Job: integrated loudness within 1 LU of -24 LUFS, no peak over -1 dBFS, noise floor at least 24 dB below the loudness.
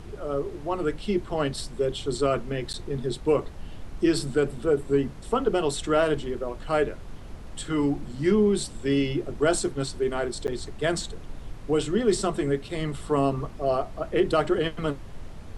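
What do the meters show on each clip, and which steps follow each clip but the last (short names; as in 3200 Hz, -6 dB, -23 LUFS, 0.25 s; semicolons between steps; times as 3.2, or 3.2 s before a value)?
dropouts 2; longest dropout 9.5 ms; noise floor -41 dBFS; noise floor target -51 dBFS; loudness -26.5 LUFS; peak -11.0 dBFS; loudness target -24.0 LUFS
-> interpolate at 2.73/10.47, 9.5 ms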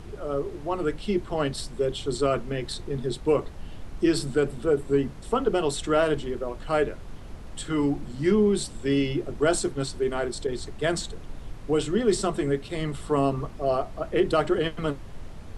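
dropouts 0; noise floor -41 dBFS; noise floor target -51 dBFS
-> noise print and reduce 10 dB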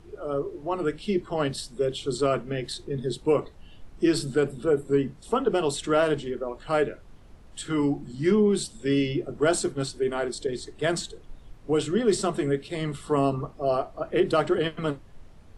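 noise floor -49 dBFS; noise floor target -51 dBFS
-> noise print and reduce 6 dB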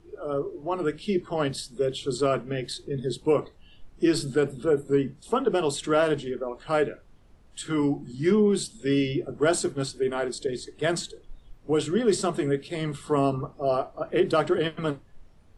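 noise floor -54 dBFS; loudness -26.5 LUFS; peak -11.0 dBFS; loudness target -24.0 LUFS
-> gain +2.5 dB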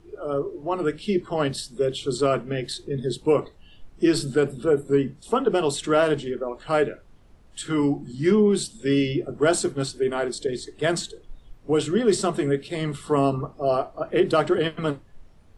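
loudness -24.0 LUFS; peak -8.5 dBFS; noise floor -51 dBFS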